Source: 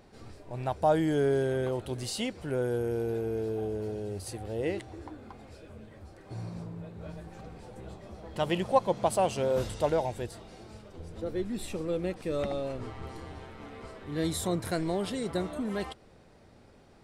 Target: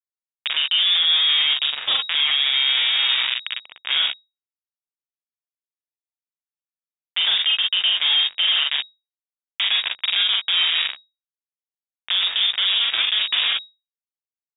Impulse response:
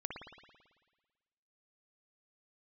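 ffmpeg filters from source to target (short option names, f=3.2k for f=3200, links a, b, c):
-filter_complex "[0:a]asetrate=51597,aresample=44100,asplit=2[a][b];[b]acompressor=mode=upward:threshold=-33dB:ratio=2.5,volume=-2dB[c];[a][c]amix=inputs=2:normalize=0,acrusher=bits=3:mix=0:aa=0.000001,asoftclip=type=tanh:threshold=-9.5dB,lowpass=f=3.2k:t=q:w=0.5098,lowpass=f=3.2k:t=q:w=0.6013,lowpass=f=3.2k:t=q:w=0.9,lowpass=f=3.2k:t=q:w=2.563,afreqshift=-3800,tiltshelf=f=1.4k:g=-6,acompressor=threshold=-20dB:ratio=3,lowshelf=f=480:g=-4.5,aecho=1:1:42|57:0.668|0.251,alimiter=limit=-17.5dB:level=0:latency=1:release=36,volume=7dB"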